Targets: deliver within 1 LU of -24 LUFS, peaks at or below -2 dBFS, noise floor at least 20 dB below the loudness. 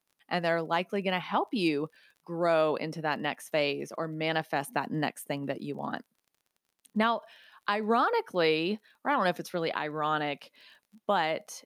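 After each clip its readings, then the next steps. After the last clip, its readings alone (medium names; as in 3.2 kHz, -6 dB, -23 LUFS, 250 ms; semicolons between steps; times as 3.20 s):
tick rate 31 per s; loudness -30.5 LUFS; peak level -14.0 dBFS; loudness target -24.0 LUFS
-> de-click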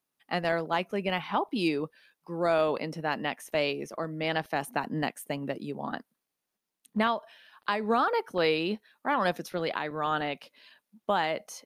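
tick rate 0 per s; loudness -30.5 LUFS; peak level -14.0 dBFS; loudness target -24.0 LUFS
-> trim +6.5 dB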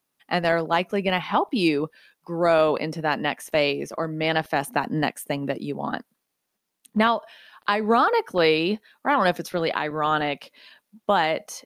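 loudness -24.0 LUFS; peak level -7.5 dBFS; noise floor -79 dBFS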